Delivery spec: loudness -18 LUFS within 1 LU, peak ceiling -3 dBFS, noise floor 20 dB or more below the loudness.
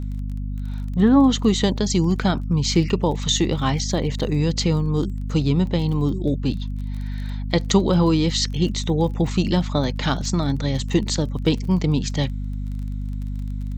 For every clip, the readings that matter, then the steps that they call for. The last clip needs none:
tick rate 26 per s; hum 50 Hz; highest harmonic 250 Hz; hum level -24 dBFS; loudness -22.0 LUFS; peak level -4.5 dBFS; loudness target -18.0 LUFS
-> de-click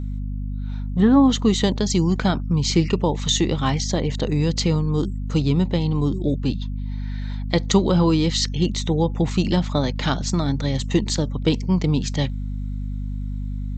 tick rate 0 per s; hum 50 Hz; highest harmonic 250 Hz; hum level -24 dBFS
-> hum notches 50/100/150/200/250 Hz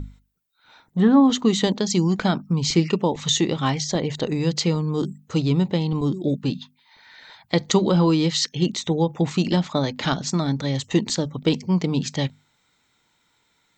hum not found; loudness -22.0 LUFS; peak level -4.5 dBFS; loudness target -18.0 LUFS
-> trim +4 dB; peak limiter -3 dBFS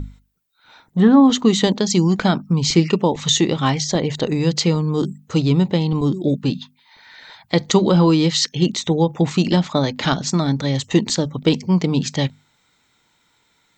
loudness -18.0 LUFS; peak level -3.0 dBFS; noise floor -63 dBFS

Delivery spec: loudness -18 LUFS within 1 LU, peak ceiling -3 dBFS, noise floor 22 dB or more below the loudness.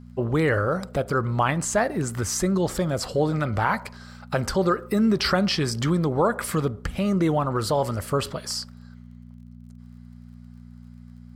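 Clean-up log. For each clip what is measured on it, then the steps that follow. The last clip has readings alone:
tick rate 31 per s; hum 60 Hz; highest harmonic 240 Hz; hum level -45 dBFS; loudness -24.5 LUFS; peak level -8.5 dBFS; loudness target -18.0 LUFS
-> de-click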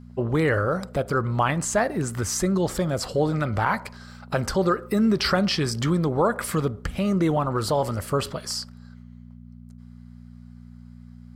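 tick rate 0.35 per s; hum 60 Hz; highest harmonic 240 Hz; hum level -45 dBFS
-> de-hum 60 Hz, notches 4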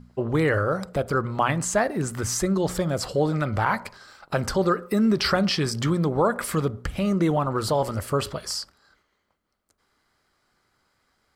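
hum not found; loudness -24.5 LUFS; peak level -8.5 dBFS; loudness target -18.0 LUFS
-> trim +6.5 dB; peak limiter -3 dBFS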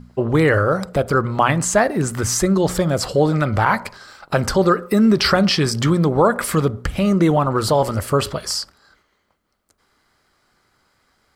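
loudness -18.0 LUFS; peak level -3.0 dBFS; noise floor -67 dBFS

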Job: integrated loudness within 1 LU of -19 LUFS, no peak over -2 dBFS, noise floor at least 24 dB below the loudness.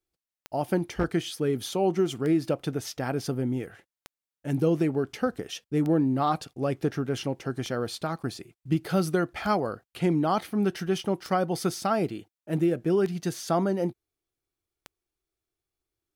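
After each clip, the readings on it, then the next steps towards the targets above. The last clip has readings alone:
clicks found 9; loudness -28.0 LUFS; peak level -12.5 dBFS; loudness target -19.0 LUFS
-> de-click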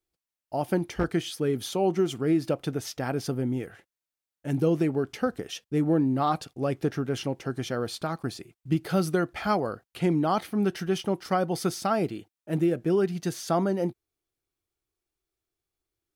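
clicks found 0; loudness -28.0 LUFS; peak level -12.5 dBFS; loudness target -19.0 LUFS
-> trim +9 dB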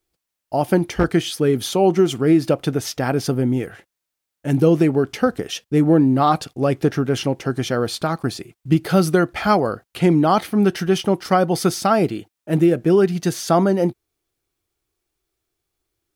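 loudness -19.0 LUFS; peak level -3.5 dBFS; noise floor -82 dBFS

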